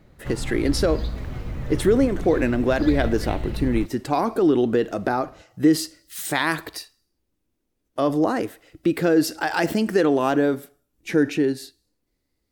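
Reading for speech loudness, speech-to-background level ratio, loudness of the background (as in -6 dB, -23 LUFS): -22.5 LUFS, 9.0 dB, -31.5 LUFS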